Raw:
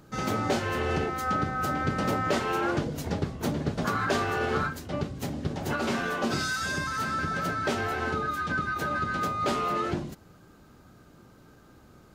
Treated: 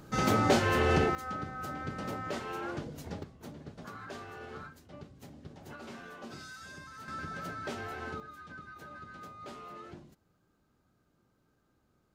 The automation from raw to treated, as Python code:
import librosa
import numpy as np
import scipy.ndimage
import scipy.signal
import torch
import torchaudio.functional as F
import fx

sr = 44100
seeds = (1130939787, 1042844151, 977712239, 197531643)

y = fx.gain(x, sr, db=fx.steps((0.0, 2.0), (1.15, -10.5), (3.23, -17.5), (7.08, -10.5), (8.2, -18.5)))